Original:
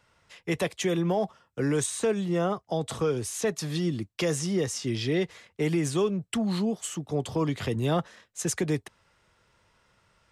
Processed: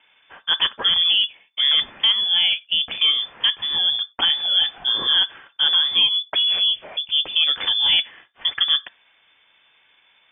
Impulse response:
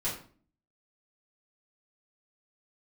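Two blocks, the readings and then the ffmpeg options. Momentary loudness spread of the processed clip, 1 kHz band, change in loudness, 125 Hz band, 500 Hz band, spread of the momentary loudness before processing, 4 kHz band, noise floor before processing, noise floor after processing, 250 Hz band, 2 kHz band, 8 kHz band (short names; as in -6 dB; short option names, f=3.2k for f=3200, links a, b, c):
6 LU, +1.0 dB, +11.0 dB, under -20 dB, -16.0 dB, 5 LU, +25.5 dB, -69 dBFS, -60 dBFS, under -20 dB, +10.0 dB, under -40 dB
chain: -filter_complex "[0:a]asplit=2[a][b];[b]equalizer=f=2.2k:t=o:w=0.73:g=13.5[c];[1:a]atrim=start_sample=2205,afade=t=out:st=0.15:d=0.01,atrim=end_sample=7056[d];[c][d]afir=irnorm=-1:irlink=0,volume=-29dB[e];[a][e]amix=inputs=2:normalize=0,lowpass=f=3.1k:t=q:w=0.5098,lowpass=f=3.1k:t=q:w=0.6013,lowpass=f=3.1k:t=q:w=0.9,lowpass=f=3.1k:t=q:w=2.563,afreqshift=-3600,volume=7.5dB"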